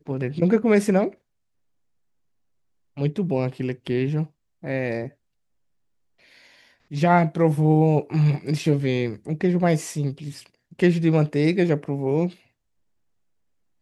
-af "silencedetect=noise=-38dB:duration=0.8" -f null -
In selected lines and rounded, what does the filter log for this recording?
silence_start: 1.14
silence_end: 2.97 | silence_duration: 1.83
silence_start: 5.08
silence_end: 6.91 | silence_duration: 1.83
silence_start: 12.33
silence_end: 13.82 | silence_duration: 1.49